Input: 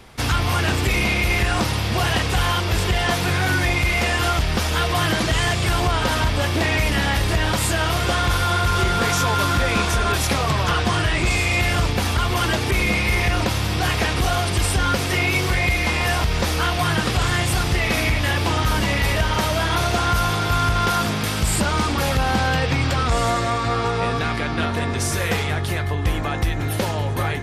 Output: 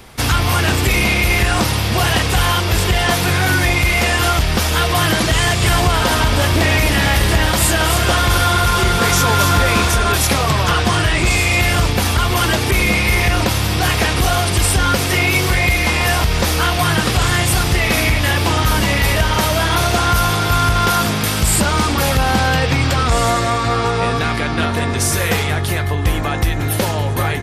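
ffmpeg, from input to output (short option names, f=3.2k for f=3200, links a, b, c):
-filter_complex "[0:a]asplit=3[a][b][c];[a]afade=t=out:st=5.59:d=0.02[d];[b]aecho=1:1:273:0.422,afade=t=in:st=5.59:d=0.02,afade=t=out:st=9.88:d=0.02[e];[c]afade=t=in:st=9.88:d=0.02[f];[d][e][f]amix=inputs=3:normalize=0,highshelf=f=10k:g=9,volume=4.5dB"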